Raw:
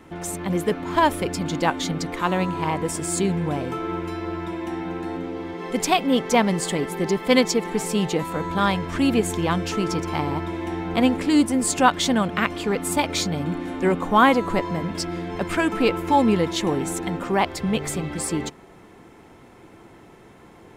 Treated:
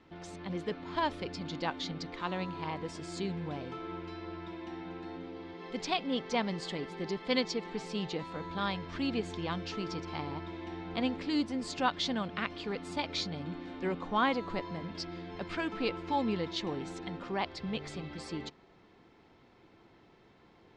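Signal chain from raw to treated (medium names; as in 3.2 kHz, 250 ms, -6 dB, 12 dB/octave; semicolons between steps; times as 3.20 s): four-pole ladder low-pass 5.3 kHz, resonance 45%; trim -4.5 dB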